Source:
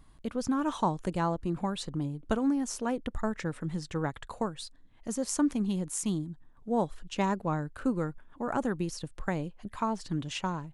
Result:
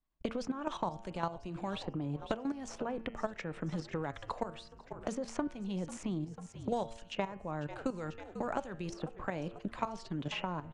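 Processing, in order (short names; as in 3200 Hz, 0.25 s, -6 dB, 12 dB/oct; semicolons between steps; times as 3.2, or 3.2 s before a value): fifteen-band EQ 100 Hz -10 dB, 630 Hz +5 dB, 2500 Hz +4 dB; level quantiser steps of 13 dB; dynamic EQ 260 Hz, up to -5 dB, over -42 dBFS, Q 1.7; gate -50 dBFS, range -50 dB; Bessel low-pass 5200 Hz, order 4; de-hum 114 Hz, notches 28; on a send: frequency-shifting echo 0.493 s, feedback 59%, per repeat -57 Hz, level -22 dB; on the sum: three-band squash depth 100%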